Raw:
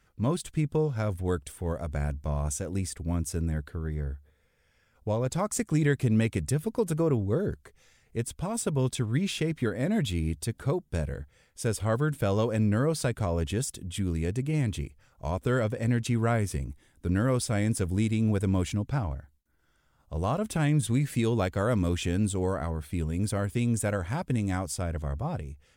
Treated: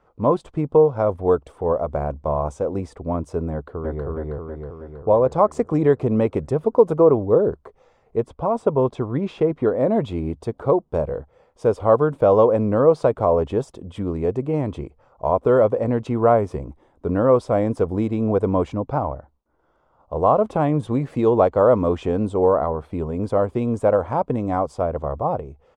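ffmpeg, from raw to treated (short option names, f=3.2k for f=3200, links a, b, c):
-filter_complex "[0:a]asplit=2[a][b];[b]afade=t=in:st=3.52:d=0.01,afade=t=out:st=4.06:d=0.01,aecho=0:1:320|640|960|1280|1600|1920|2240|2560|2880:0.944061|0.566437|0.339862|0.203917|0.12235|0.0734102|0.0440461|0.0264277|0.0158566[c];[a][c]amix=inputs=2:normalize=0,asettb=1/sr,asplit=3[d][e][f];[d]atrim=end=8.204[g];[e]atrim=start=8.2:end=9.77,asetpts=PTS-STARTPTS,afade=t=in:d=0.004:c=qsin,afade=t=out:st=1.566:d=0.004:c=qsin,highshelf=f=4.5k:g=-7.5[h];[f]atrim=start=9.766[i];[g][h]acrossfade=d=0.004:c1=hsin:c2=qsin[j];[j][i]acrossfade=d=0.004:c1=qsin:c2=hsin,firequalizer=gain_entry='entry(120,0);entry(480,15);entry(1100,14);entry(1600,-3);entry(13000,-26)':delay=0.05:min_phase=1"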